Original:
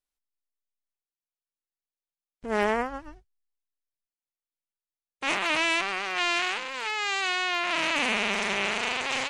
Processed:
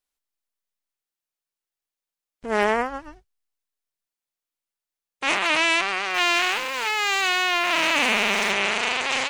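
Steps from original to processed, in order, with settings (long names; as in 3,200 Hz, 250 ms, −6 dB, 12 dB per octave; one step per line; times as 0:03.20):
0:06.14–0:08.52: converter with a step at zero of −38 dBFS
low-shelf EQ 250 Hz −5.5 dB
level +5 dB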